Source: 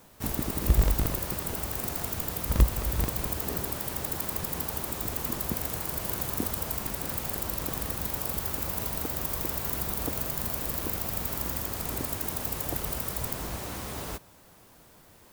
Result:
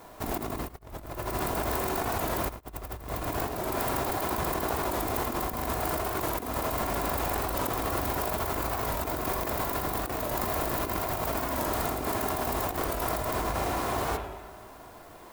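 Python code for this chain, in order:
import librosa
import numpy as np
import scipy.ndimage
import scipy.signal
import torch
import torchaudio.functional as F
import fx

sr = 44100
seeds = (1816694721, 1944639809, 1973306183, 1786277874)

p1 = fx.peak_eq(x, sr, hz=870.0, db=9.5, octaves=2.3)
p2 = fx.sample_hold(p1, sr, seeds[0], rate_hz=3100.0, jitter_pct=0)
p3 = p1 + F.gain(torch.from_numpy(p2), -9.5).numpy()
p4 = p3 + 0.31 * np.pad(p3, (int(2.9 * sr / 1000.0), 0))[:len(p3)]
p5 = fx.rev_spring(p4, sr, rt60_s=1.2, pass_ms=(37, 45), chirp_ms=65, drr_db=4.0)
p6 = fx.over_compress(p5, sr, threshold_db=-28.0, ratio=-0.5)
p7 = p6 + fx.echo_single(p6, sr, ms=108, db=-19.5, dry=0)
p8 = fx.record_warp(p7, sr, rpm=45.0, depth_cents=100.0)
y = F.gain(torch.from_numpy(p8), -3.0).numpy()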